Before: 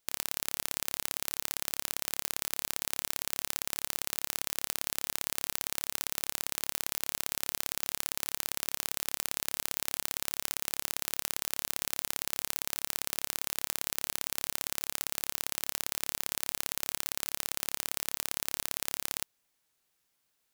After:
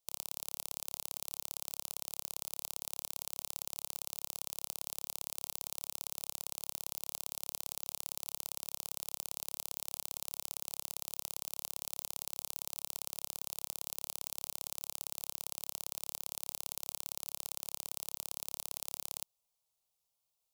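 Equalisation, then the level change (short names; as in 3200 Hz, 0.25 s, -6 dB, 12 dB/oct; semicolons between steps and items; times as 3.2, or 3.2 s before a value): fixed phaser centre 710 Hz, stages 4; -6.0 dB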